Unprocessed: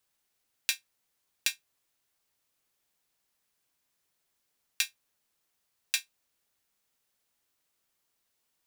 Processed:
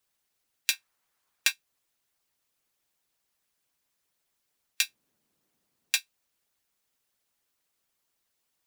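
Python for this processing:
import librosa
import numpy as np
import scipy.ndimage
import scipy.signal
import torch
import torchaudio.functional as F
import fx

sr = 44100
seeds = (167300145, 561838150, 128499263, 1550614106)

y = fx.peak_eq(x, sr, hz=1200.0, db=8.0, octaves=1.6, at=(0.73, 1.52))
y = fx.hpss(y, sr, part='percussive', gain_db=9)
y = fx.peak_eq(y, sr, hz=220.0, db=14.5, octaves=2.5, at=(4.87, 5.97))
y = y * 10.0 ** (-6.0 / 20.0)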